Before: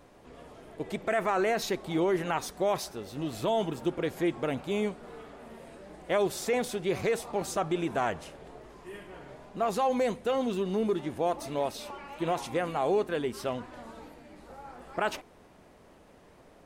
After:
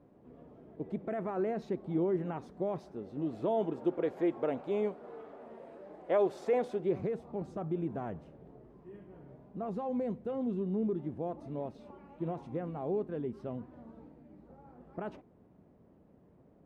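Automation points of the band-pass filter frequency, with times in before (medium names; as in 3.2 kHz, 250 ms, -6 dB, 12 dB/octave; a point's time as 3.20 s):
band-pass filter, Q 0.85
2.73 s 200 Hz
4.08 s 520 Hz
6.66 s 520 Hz
7.11 s 160 Hz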